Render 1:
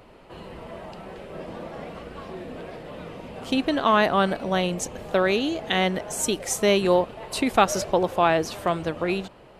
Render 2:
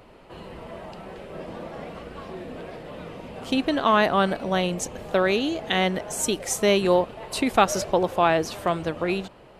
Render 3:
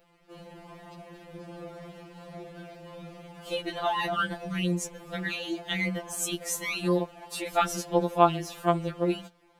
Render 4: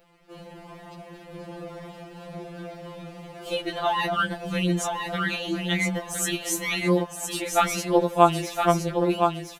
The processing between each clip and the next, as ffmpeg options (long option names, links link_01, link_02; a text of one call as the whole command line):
ffmpeg -i in.wav -af anull out.wav
ffmpeg -i in.wav -af "highshelf=frequency=12000:gain=10,aeval=exprs='sgn(val(0))*max(abs(val(0))-0.00299,0)':channel_layout=same,afftfilt=real='re*2.83*eq(mod(b,8),0)':imag='im*2.83*eq(mod(b,8),0)':win_size=2048:overlap=0.75,volume=-3.5dB" out.wav
ffmpeg -i in.wav -af "aecho=1:1:1014|2028|3042:0.531|0.0956|0.0172,volume=3.5dB" out.wav